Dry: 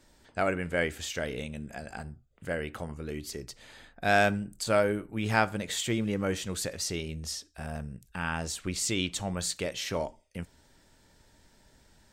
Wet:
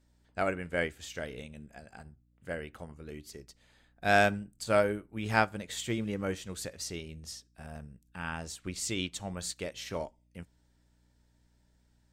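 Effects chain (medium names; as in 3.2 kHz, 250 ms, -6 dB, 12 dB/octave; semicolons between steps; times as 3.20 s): hum 60 Hz, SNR 22 dB; upward expansion 1.5:1, over -49 dBFS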